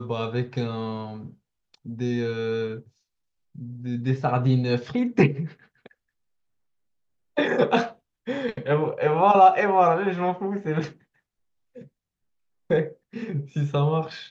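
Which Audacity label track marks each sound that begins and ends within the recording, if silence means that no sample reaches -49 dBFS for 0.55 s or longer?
3.550000	5.920000	sound
7.370000	10.970000	sound
11.750000	11.880000	sound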